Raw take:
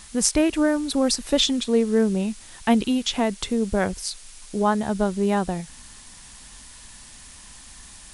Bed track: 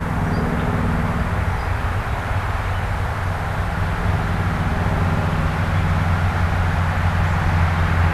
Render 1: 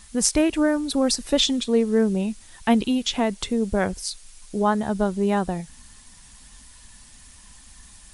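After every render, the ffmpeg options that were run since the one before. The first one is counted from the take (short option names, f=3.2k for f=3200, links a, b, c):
-af "afftdn=nr=6:nf=-45"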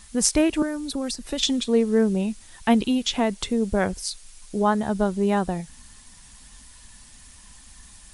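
-filter_complex "[0:a]asettb=1/sr,asplit=3[a][b][c];[a]atrim=end=0.624[d];[b]atrim=start=0.62:end=1.43,asetpts=PTS-STARTPTS,afade=t=in:d=0.004:c=qsin,afade=t=out:st=0.806:d=0.004:c=qsin,acrossover=split=260|1800|3900[e][f][g][h];[e]acompressor=threshold=-33dB:ratio=3[i];[f]acompressor=threshold=-33dB:ratio=3[j];[g]acompressor=threshold=-43dB:ratio=3[k];[h]acompressor=threshold=-34dB:ratio=3[l];[i][j][k][l]amix=inputs=4:normalize=0[m];[c]atrim=start=1.426[n];[d][m]acrossfade=d=0.004:c1=hsin:c2=qsin[o];[o][n]acrossfade=d=0.004:c1=qsin:c2=hsin"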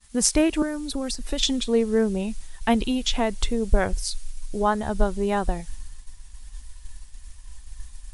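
-af "agate=range=-33dB:threshold=-41dB:ratio=3:detection=peak,asubboost=boost=11:cutoff=53"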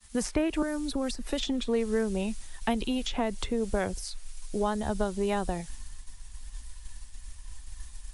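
-filter_complex "[0:a]acrossover=split=87|440|980|2600[a][b][c][d][e];[a]acompressor=threshold=-35dB:ratio=4[f];[b]acompressor=threshold=-30dB:ratio=4[g];[c]acompressor=threshold=-32dB:ratio=4[h];[d]acompressor=threshold=-40dB:ratio=4[i];[e]acompressor=threshold=-40dB:ratio=4[j];[f][g][h][i][j]amix=inputs=5:normalize=0"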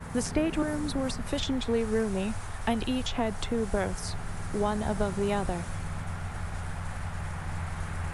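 -filter_complex "[1:a]volume=-17.5dB[a];[0:a][a]amix=inputs=2:normalize=0"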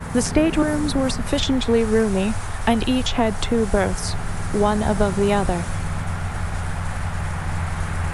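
-af "volume=9.5dB"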